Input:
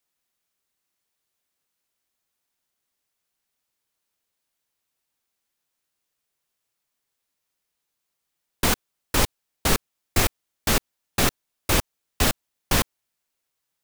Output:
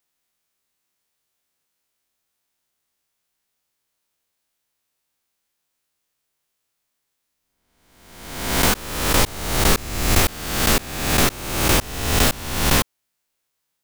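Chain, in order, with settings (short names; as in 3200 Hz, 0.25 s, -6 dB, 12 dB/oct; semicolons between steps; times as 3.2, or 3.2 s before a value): spectral swells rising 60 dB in 1.07 s; gain +1 dB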